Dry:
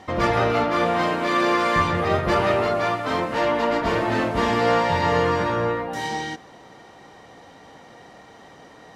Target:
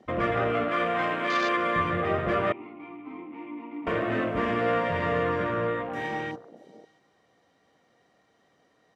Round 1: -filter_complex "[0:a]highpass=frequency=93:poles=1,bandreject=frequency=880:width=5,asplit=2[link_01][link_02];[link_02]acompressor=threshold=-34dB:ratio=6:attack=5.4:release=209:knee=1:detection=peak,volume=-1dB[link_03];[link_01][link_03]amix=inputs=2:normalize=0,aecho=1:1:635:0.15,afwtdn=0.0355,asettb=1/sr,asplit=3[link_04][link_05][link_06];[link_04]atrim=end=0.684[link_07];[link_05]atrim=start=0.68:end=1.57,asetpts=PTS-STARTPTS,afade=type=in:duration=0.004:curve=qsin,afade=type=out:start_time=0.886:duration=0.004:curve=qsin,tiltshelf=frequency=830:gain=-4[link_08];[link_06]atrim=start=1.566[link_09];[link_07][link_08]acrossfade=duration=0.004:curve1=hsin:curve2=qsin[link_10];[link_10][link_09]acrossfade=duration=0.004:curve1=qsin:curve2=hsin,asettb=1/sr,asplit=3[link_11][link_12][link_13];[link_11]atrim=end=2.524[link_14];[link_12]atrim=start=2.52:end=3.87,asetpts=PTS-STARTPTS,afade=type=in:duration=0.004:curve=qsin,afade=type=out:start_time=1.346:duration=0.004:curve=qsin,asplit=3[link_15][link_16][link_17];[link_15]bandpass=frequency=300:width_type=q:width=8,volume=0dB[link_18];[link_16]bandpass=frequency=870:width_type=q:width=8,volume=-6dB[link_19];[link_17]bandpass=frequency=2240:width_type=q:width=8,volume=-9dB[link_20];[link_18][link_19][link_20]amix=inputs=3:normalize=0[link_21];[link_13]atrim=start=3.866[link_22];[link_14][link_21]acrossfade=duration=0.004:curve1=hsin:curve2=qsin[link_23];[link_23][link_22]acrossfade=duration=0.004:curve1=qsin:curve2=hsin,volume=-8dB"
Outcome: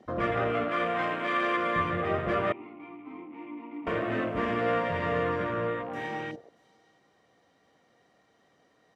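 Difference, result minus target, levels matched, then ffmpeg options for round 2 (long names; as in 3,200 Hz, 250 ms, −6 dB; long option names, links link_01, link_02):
downward compressor: peak gain reduction +9.5 dB
-filter_complex "[0:a]highpass=frequency=93:poles=1,bandreject=frequency=880:width=5,asplit=2[link_01][link_02];[link_02]acompressor=threshold=-22.5dB:ratio=6:attack=5.4:release=209:knee=1:detection=peak,volume=-1dB[link_03];[link_01][link_03]amix=inputs=2:normalize=0,aecho=1:1:635:0.15,afwtdn=0.0355,asettb=1/sr,asplit=3[link_04][link_05][link_06];[link_04]atrim=end=0.684[link_07];[link_05]atrim=start=0.68:end=1.57,asetpts=PTS-STARTPTS,afade=type=in:duration=0.004:curve=qsin,afade=type=out:start_time=0.886:duration=0.004:curve=qsin,tiltshelf=frequency=830:gain=-4[link_08];[link_06]atrim=start=1.566[link_09];[link_07][link_08]acrossfade=duration=0.004:curve1=hsin:curve2=qsin[link_10];[link_10][link_09]acrossfade=duration=0.004:curve1=qsin:curve2=hsin,asettb=1/sr,asplit=3[link_11][link_12][link_13];[link_11]atrim=end=2.524[link_14];[link_12]atrim=start=2.52:end=3.87,asetpts=PTS-STARTPTS,afade=type=in:duration=0.004:curve=qsin,afade=type=out:start_time=1.346:duration=0.004:curve=qsin,asplit=3[link_15][link_16][link_17];[link_15]bandpass=frequency=300:width_type=q:width=8,volume=0dB[link_18];[link_16]bandpass=frequency=870:width_type=q:width=8,volume=-6dB[link_19];[link_17]bandpass=frequency=2240:width_type=q:width=8,volume=-9dB[link_20];[link_18][link_19][link_20]amix=inputs=3:normalize=0[link_21];[link_13]atrim=start=3.866[link_22];[link_14][link_21]acrossfade=duration=0.004:curve1=hsin:curve2=qsin[link_23];[link_23][link_22]acrossfade=duration=0.004:curve1=qsin:curve2=hsin,volume=-8dB"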